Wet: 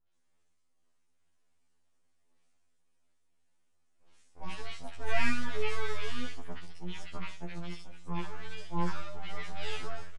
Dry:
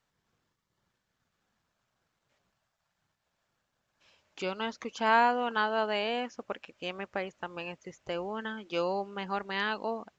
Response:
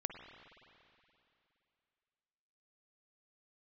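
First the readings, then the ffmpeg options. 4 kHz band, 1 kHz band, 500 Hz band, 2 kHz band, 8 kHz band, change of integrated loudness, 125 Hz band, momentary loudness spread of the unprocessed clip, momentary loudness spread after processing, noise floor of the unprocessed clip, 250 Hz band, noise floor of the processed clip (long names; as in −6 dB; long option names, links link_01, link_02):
−5.5 dB, −11.5 dB, −9.5 dB, −5.5 dB, can't be measured, −7.0 dB, +7.0 dB, 14 LU, 13 LU, −82 dBFS, −3.5 dB, −70 dBFS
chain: -filter_complex "[0:a]highshelf=frequency=4600:gain=12,acrossover=split=2600[link_01][link_02];[link_02]acompressor=threshold=-48dB:ratio=4:attack=1:release=60[link_03];[link_01][link_03]amix=inputs=2:normalize=0,aeval=exprs='abs(val(0))':channel_layout=same,acrossover=split=1300|4400[link_04][link_05][link_06];[link_05]adelay=70[link_07];[link_06]adelay=130[link_08];[link_04][link_07][link_08]amix=inputs=3:normalize=0,asplit=2[link_09][link_10];[1:a]atrim=start_sample=2205,adelay=28[link_11];[link_10][link_11]afir=irnorm=-1:irlink=0,volume=-12.5dB[link_12];[link_09][link_12]amix=inputs=2:normalize=0,aresample=22050,aresample=44100,afftfilt=real='re*2*eq(mod(b,4),0)':imag='im*2*eq(mod(b,4),0)':win_size=2048:overlap=0.75"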